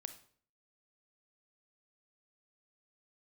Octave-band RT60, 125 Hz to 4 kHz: 0.60 s, 0.60 s, 0.55 s, 0.50 s, 0.45 s, 0.45 s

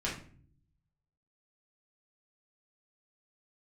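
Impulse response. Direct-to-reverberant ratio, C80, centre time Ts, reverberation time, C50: -7.0 dB, 11.5 dB, 31 ms, 0.50 s, 6.0 dB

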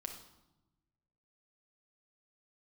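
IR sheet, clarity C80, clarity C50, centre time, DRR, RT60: 10.0 dB, 6.5 dB, 21 ms, 2.5 dB, 0.95 s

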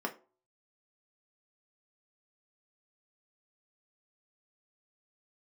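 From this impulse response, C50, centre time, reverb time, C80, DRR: 15.5 dB, 8 ms, 0.40 s, 21.0 dB, 1.5 dB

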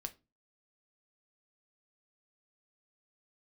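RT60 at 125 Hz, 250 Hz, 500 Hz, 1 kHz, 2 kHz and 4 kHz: 0.45 s, 0.40 s, 0.30 s, 0.25 s, 0.20 s, 0.20 s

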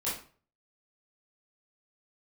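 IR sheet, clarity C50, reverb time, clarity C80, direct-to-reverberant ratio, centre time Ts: 4.0 dB, 0.40 s, 10.5 dB, -9.5 dB, 39 ms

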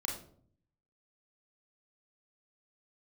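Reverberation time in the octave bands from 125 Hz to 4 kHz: 0.95 s, 0.80 s, 0.65 s, 0.50 s, 0.40 s, 0.35 s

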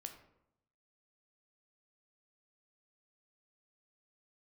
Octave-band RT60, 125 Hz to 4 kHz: 1.1 s, 0.95 s, 0.85 s, 0.80 s, 0.60 s, 0.45 s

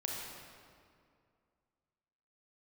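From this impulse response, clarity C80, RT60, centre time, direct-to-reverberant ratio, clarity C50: 1.0 dB, 2.3 s, 110 ms, -2.0 dB, -0.5 dB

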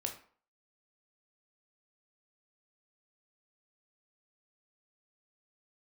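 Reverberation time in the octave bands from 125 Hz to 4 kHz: 0.40 s, 0.45 s, 0.45 s, 0.50 s, 0.40 s, 0.35 s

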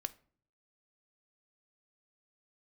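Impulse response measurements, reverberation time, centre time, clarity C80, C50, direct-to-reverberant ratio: 0.50 s, 2 ms, 24.5 dB, 20.0 dB, 11.5 dB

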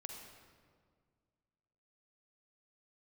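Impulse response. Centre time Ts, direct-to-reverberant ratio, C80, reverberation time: 62 ms, 2.0 dB, 4.0 dB, 1.9 s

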